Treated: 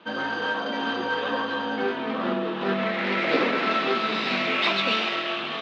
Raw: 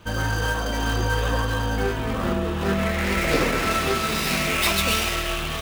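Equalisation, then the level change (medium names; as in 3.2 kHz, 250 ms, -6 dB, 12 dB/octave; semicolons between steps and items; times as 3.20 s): elliptic band-pass 220–3900 Hz, stop band 50 dB; 0.0 dB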